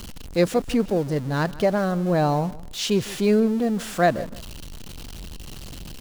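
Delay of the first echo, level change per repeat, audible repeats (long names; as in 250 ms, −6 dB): 157 ms, −13.0 dB, 2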